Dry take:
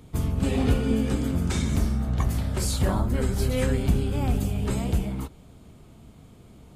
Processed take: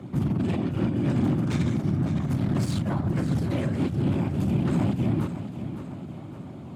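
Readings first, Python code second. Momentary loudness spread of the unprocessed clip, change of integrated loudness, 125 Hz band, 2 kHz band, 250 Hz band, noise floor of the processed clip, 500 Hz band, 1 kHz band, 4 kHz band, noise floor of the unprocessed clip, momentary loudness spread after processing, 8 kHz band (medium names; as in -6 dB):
4 LU, -0.5 dB, +1.0 dB, -3.0 dB, +2.5 dB, -40 dBFS, -2.5 dB, -1.5 dB, -6.0 dB, -50 dBFS, 12 LU, -11.5 dB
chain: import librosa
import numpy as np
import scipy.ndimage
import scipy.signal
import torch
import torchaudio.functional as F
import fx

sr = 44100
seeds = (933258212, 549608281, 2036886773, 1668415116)

y = fx.fold_sine(x, sr, drive_db=5, ceiling_db=-9.5)
y = fx.over_compress(y, sr, threshold_db=-18.0, ratio=-0.5)
y = fx.whisperise(y, sr, seeds[0])
y = np.clip(10.0 ** (17.5 / 20.0) * y, -1.0, 1.0) / 10.0 ** (17.5 / 20.0)
y = scipy.signal.sosfilt(scipy.signal.butter(4, 100.0, 'highpass', fs=sr, output='sos'), y)
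y = fx.peak_eq(y, sr, hz=460.0, db=-12.5, octaves=0.23)
y = fx.echo_feedback(y, sr, ms=559, feedback_pct=48, wet_db=-11.0)
y = fx.dynamic_eq(y, sr, hz=730.0, q=0.85, threshold_db=-41.0, ratio=4.0, max_db=-5)
y = fx.lowpass(y, sr, hz=1100.0, slope=6)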